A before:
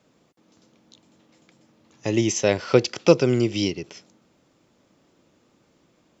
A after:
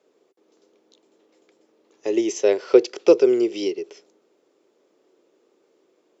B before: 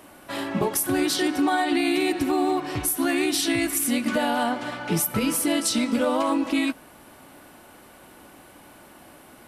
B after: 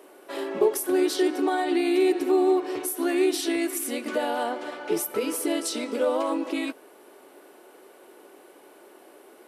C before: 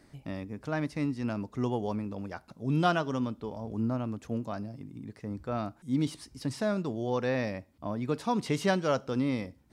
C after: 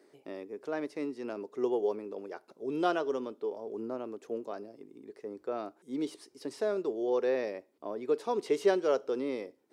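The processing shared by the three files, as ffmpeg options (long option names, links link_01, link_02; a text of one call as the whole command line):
ffmpeg -i in.wav -af "highpass=frequency=400:width_type=q:width=5,volume=-6dB" out.wav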